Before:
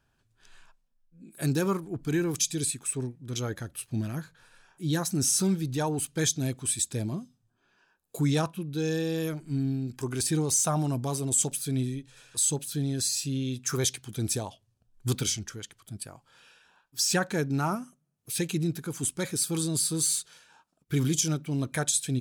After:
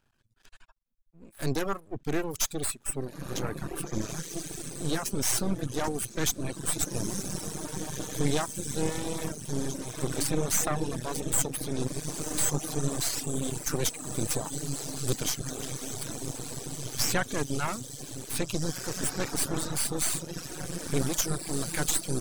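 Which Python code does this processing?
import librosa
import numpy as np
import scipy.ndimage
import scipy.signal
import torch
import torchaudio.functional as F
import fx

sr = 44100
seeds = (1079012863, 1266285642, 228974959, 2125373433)

y = fx.echo_diffused(x, sr, ms=1973, feedback_pct=65, wet_db=-5.0)
y = np.maximum(y, 0.0)
y = fx.dereverb_blind(y, sr, rt60_s=0.84)
y = F.gain(torch.from_numpy(y), 3.0).numpy()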